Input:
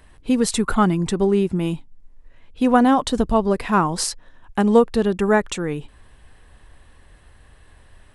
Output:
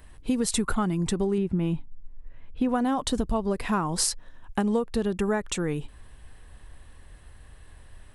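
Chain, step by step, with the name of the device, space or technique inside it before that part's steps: 1.38–2.69 s: tone controls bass +3 dB, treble -13 dB; ASMR close-microphone chain (bass shelf 150 Hz +5 dB; compression 6:1, threshold -19 dBFS, peak gain reduction 11 dB; treble shelf 7.8 kHz +7 dB); trim -3 dB

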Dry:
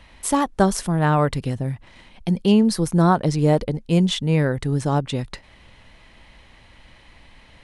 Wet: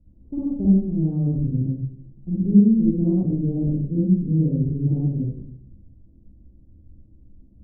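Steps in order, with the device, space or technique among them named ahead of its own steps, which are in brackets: next room (low-pass 330 Hz 24 dB/octave; reverberation RT60 0.65 s, pre-delay 43 ms, DRR -7 dB); 3.98–4.52 s: low-pass 1.2 kHz 12 dB/octave; trim -7.5 dB

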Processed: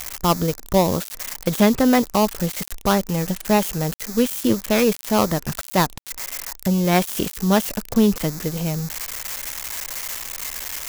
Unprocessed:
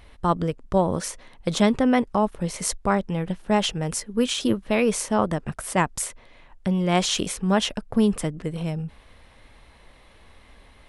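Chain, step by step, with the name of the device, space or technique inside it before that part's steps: budget class-D amplifier (dead-time distortion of 0.15 ms; zero-crossing glitches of -15.5 dBFS); trim +3.5 dB

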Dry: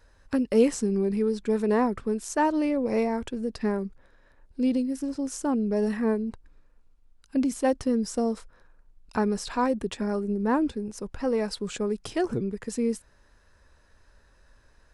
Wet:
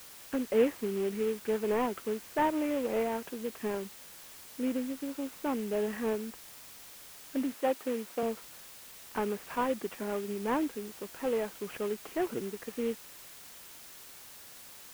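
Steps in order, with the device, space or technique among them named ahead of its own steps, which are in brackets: army field radio (band-pass 300–2800 Hz; CVSD coder 16 kbps; white noise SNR 16 dB); 7.54–8.23 s: high-pass 250 Hz 12 dB/octave; trim -3 dB

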